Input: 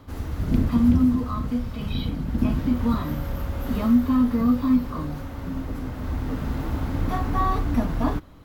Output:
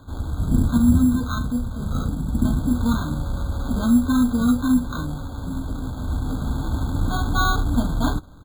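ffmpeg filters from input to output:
-af "aecho=1:1:1:0.32,acrusher=samples=17:mix=1:aa=0.000001,afftfilt=real='re*eq(mod(floor(b*sr/1024/1600),2),0)':imag='im*eq(mod(floor(b*sr/1024/1600),2),0)':win_size=1024:overlap=0.75,volume=1dB"

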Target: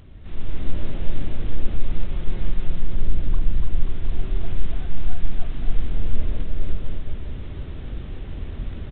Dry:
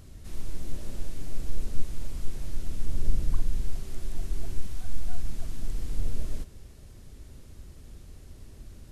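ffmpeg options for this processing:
-filter_complex "[0:a]asplit=3[a][b][c];[a]afade=t=out:st=1.79:d=0.02[d];[b]aecho=1:1:5.6:0.32,afade=t=in:st=1.79:d=0.02,afade=t=out:st=3.03:d=0.02[e];[c]afade=t=in:st=3.03:d=0.02[f];[d][e][f]amix=inputs=3:normalize=0,asettb=1/sr,asplit=3[g][h][i];[g]atrim=end=4.884[j];[h]atrim=start=4.88:end=5.63,asetpts=PTS-STARTPTS,afade=t=in:d=0.004:c=qsin,afade=t=out:st=0.746:d=0.004:c=qsin,equalizer=f=78:t=o:w=0.8:g=-5[k];[i]atrim=start=5.626[l];[j][k]acrossfade=d=0.004:c1=hsin:c2=qsin[m];[m][l]acrossfade=d=0.004:c1=qsin:c2=hsin,asplit=2[n][o];[o]adelay=524.8,volume=-27dB,highshelf=f=4k:g=-11.8[p];[n][p]amix=inputs=2:normalize=0,acontrast=67,aecho=1:1:290|536.5|746|924.1|1076:0.631|0.398|0.251|0.158|0.1,dynaudnorm=f=160:g=5:m=10dB,volume=-3.5dB" -ar 8000 -c:a adpcm_g726 -b:a 32k

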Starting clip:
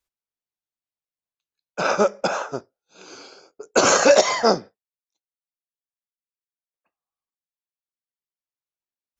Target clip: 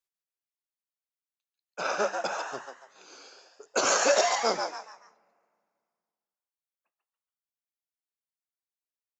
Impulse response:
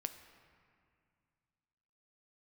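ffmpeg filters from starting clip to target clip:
-filter_complex "[0:a]lowshelf=f=270:g=-12,bandreject=f=50:t=h:w=6,bandreject=f=100:t=h:w=6,bandreject=f=150:t=h:w=6,bandreject=f=200:t=h:w=6,asplit=5[a][b][c][d][e];[b]adelay=142,afreqshift=130,volume=-5.5dB[f];[c]adelay=284,afreqshift=260,volume=-14.4dB[g];[d]adelay=426,afreqshift=390,volume=-23.2dB[h];[e]adelay=568,afreqshift=520,volume=-32.1dB[i];[a][f][g][h][i]amix=inputs=5:normalize=0,asplit=2[j][k];[1:a]atrim=start_sample=2205,highshelf=f=5.8k:g=10.5[l];[k][l]afir=irnorm=-1:irlink=0,volume=-13.5dB[m];[j][m]amix=inputs=2:normalize=0,volume=-9dB"

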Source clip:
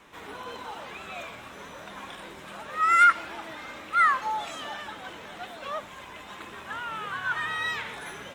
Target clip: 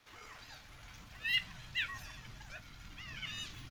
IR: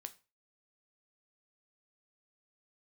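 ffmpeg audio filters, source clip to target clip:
-filter_complex "[0:a]aeval=exprs='val(0)*sin(2*PI*230*n/s)':c=same,asubboost=boost=10:cutoff=95,atempo=1.3[a];[1:a]atrim=start_sample=2205[b];[a][b]afir=irnorm=-1:irlink=0,asetrate=76440,aresample=44100,volume=-5.5dB"

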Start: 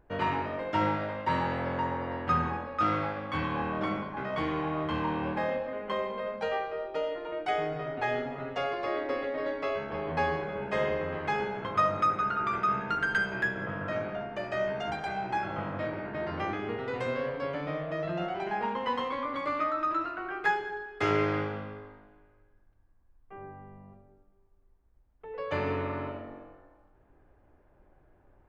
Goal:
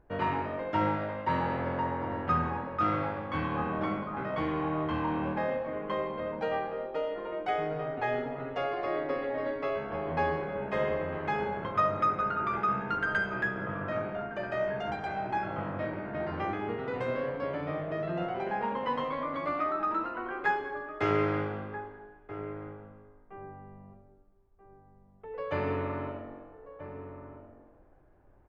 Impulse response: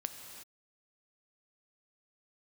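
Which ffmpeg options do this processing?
-filter_complex "[0:a]highshelf=f=3.7k:g=-11,asplit=2[a][b];[b]adelay=1283,volume=-11dB,highshelf=f=4k:g=-28.9[c];[a][c]amix=inputs=2:normalize=0"

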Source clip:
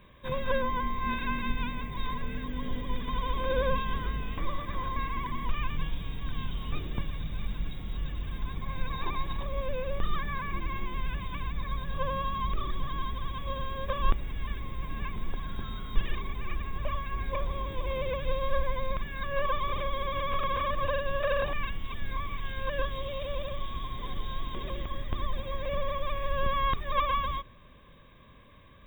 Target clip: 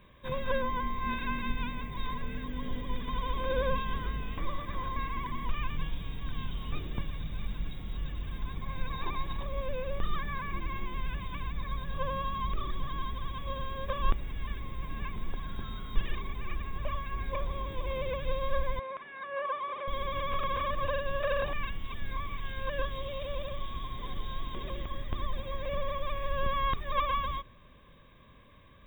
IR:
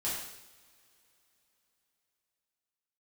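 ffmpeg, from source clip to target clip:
-filter_complex "[0:a]asettb=1/sr,asplit=3[a][b][c];[a]atrim=end=18.794[d];[b]atrim=start=18.79:end=19.88,asetpts=PTS-STARTPTS,afade=t=in:d=0.004:c=qsin,afade=t=out:st=1.086:d=0.004:c=qsin,highpass=460,lowpass=2.2k[e];[c]atrim=start=19.876[f];[d][e]acrossfade=d=0.004:c1=hsin:c2=qsin[g];[g][f]acrossfade=d=0.004:c1=qsin:c2=hsin,volume=-2dB"

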